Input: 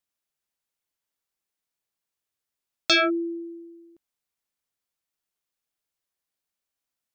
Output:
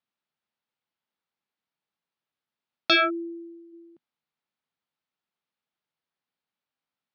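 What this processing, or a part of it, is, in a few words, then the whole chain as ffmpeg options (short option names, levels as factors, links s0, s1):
guitar cabinet: -filter_complex "[0:a]highpass=99,equalizer=f=160:t=q:w=4:g=6,equalizer=f=230:t=q:w=4:g=5,equalizer=f=860:t=q:w=4:g=4,equalizer=f=1300:t=q:w=4:g=3,lowpass=f=4300:w=0.5412,lowpass=f=4300:w=1.3066,asplit=3[s0][s1][s2];[s0]afade=t=out:st=2.95:d=0.02[s3];[s1]lowshelf=f=500:g=-8.5,afade=t=in:st=2.95:d=0.02,afade=t=out:st=3.72:d=0.02[s4];[s2]afade=t=in:st=3.72:d=0.02[s5];[s3][s4][s5]amix=inputs=3:normalize=0"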